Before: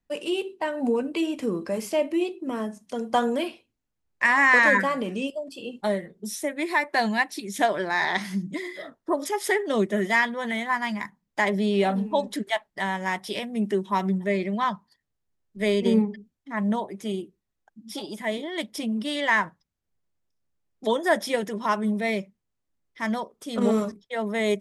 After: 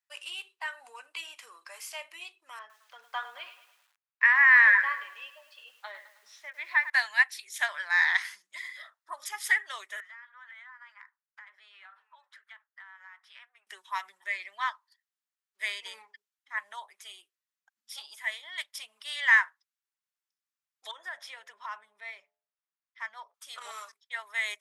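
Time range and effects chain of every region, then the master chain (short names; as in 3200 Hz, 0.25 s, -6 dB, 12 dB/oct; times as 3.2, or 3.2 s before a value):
2.59–6.9 air absorption 240 m + lo-fi delay 0.106 s, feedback 55%, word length 8-bit, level -13.5 dB
10–13.67 band-pass 1400 Hz, Q 3 + compressor 12:1, threshold -40 dBFS
20.91–23.34 RIAA curve playback + compressor, threshold -24 dBFS + de-hum 86.31 Hz, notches 10
whole clip: HPF 1100 Hz 24 dB/oct; dynamic EQ 1800 Hz, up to +7 dB, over -38 dBFS, Q 2; gain -3.5 dB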